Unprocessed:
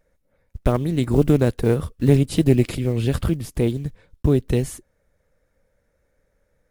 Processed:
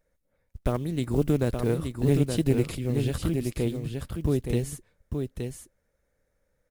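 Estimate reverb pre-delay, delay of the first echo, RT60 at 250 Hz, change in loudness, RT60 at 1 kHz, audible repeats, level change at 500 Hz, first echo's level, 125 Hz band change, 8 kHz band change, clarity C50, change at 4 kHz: no reverb audible, 872 ms, no reverb audible, −7.0 dB, no reverb audible, 1, −6.5 dB, −5.5 dB, −6.5 dB, −3.0 dB, no reverb audible, −5.0 dB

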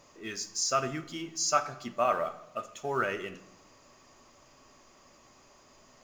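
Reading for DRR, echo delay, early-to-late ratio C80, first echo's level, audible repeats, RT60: 9.0 dB, no echo audible, 17.0 dB, no echo audible, no echo audible, 1.0 s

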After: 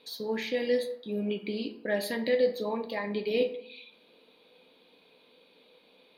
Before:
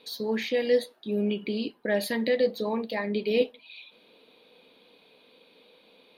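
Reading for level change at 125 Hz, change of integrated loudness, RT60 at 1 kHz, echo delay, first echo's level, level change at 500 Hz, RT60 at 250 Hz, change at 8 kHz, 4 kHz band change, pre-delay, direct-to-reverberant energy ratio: can't be measured, −3.0 dB, 0.70 s, no echo audible, no echo audible, −2.5 dB, 0.80 s, −3.0 dB, −3.0 dB, 8 ms, 7.0 dB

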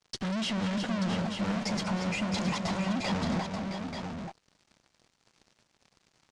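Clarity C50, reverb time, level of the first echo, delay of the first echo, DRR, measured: no reverb audible, no reverb audible, −14.5 dB, 191 ms, no reverb audible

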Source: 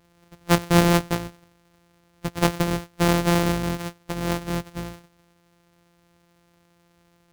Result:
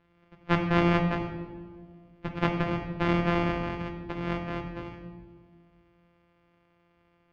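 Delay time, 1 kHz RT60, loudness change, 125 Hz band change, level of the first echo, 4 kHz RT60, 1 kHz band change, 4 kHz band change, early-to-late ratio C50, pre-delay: no echo audible, 1.5 s, −5.5 dB, −5.5 dB, no echo audible, 0.95 s, −4.5 dB, −10.0 dB, 6.0 dB, 3 ms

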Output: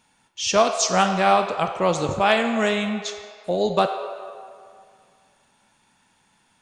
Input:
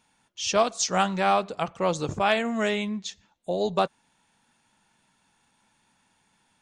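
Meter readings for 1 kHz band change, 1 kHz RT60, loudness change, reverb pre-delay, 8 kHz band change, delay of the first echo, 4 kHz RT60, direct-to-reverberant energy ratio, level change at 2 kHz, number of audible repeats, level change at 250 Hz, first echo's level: +5.0 dB, 2.1 s, +4.5 dB, 26 ms, +4.5 dB, no echo audible, 1.3 s, 6.0 dB, +5.0 dB, no echo audible, +4.0 dB, no echo audible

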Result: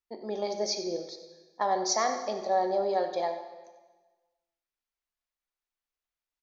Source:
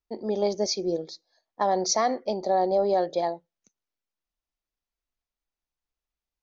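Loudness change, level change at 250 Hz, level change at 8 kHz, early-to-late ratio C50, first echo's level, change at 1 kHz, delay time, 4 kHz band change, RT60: −4.0 dB, −7.0 dB, can't be measured, 7.5 dB, −14.5 dB, −2.5 dB, 92 ms, −2.5 dB, 1.3 s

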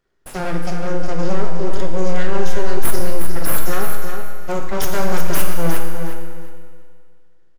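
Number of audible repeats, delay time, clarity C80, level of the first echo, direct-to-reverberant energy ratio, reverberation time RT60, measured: 2, 361 ms, 3.5 dB, −7.5 dB, 1.0 dB, 2.1 s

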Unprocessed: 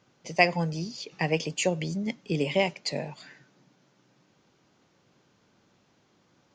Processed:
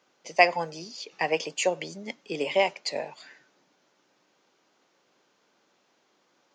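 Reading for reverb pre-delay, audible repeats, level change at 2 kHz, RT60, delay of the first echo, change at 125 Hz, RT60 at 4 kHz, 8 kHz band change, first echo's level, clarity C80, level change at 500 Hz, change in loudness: no reverb audible, no echo audible, +1.5 dB, no reverb audible, no echo audible, −14.5 dB, no reverb audible, 0.0 dB, no echo audible, no reverb audible, +1.5 dB, +0.5 dB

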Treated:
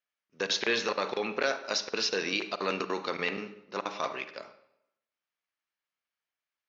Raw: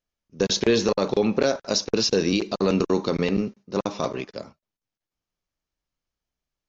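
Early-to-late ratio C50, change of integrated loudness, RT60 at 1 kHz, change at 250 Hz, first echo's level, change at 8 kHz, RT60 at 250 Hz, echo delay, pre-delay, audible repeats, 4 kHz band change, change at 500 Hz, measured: 12.5 dB, −7.5 dB, 0.80 s, −15.0 dB, no echo audible, can't be measured, 0.80 s, no echo audible, 38 ms, no echo audible, −4.5 dB, −10.0 dB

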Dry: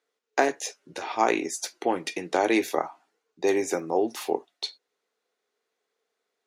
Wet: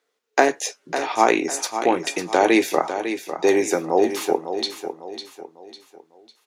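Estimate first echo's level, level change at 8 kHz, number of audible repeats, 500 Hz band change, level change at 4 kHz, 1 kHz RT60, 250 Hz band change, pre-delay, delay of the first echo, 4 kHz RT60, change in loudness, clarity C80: −9.5 dB, +6.5 dB, 4, +6.5 dB, +6.5 dB, no reverb audible, +6.5 dB, no reverb audible, 551 ms, no reverb audible, +6.5 dB, no reverb audible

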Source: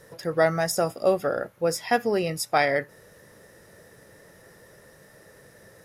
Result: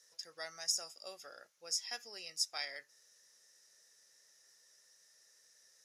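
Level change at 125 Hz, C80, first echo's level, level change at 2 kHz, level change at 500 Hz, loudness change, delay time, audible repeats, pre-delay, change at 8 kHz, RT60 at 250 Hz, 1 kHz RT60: below −40 dB, no reverb audible, no echo audible, −19.0 dB, −30.0 dB, −14.5 dB, no echo audible, no echo audible, no reverb audible, −4.5 dB, no reverb audible, no reverb audible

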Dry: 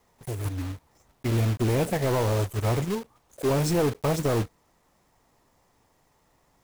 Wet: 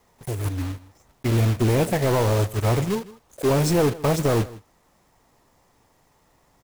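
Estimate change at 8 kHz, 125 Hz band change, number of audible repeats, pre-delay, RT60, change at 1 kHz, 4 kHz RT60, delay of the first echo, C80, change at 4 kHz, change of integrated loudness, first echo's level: +4.0 dB, +4.0 dB, 1, no reverb audible, no reverb audible, +4.0 dB, no reverb audible, 159 ms, no reverb audible, +4.0 dB, +4.0 dB, −19.5 dB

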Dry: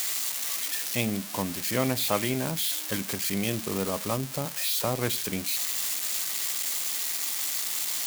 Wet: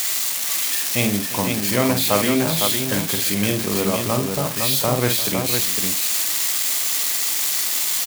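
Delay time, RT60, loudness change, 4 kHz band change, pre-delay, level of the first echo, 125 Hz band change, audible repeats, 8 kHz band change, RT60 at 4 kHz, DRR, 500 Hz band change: 49 ms, no reverb audible, +8.5 dB, +8.5 dB, no reverb audible, −6.0 dB, +8.5 dB, 3, +8.5 dB, no reverb audible, no reverb audible, +9.0 dB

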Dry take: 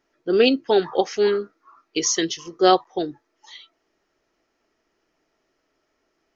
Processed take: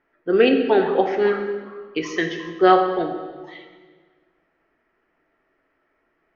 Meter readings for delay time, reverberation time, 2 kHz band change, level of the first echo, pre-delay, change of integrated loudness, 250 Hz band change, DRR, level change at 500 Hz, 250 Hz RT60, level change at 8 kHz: no echo audible, 1.5 s, +4.5 dB, no echo audible, 9 ms, +1.0 dB, +2.0 dB, 4.5 dB, +1.5 dB, 1.9 s, can't be measured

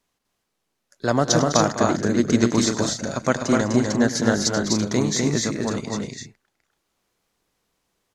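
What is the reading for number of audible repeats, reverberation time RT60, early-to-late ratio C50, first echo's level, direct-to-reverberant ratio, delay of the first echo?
4, no reverb audible, no reverb audible, −15.5 dB, no reverb audible, 101 ms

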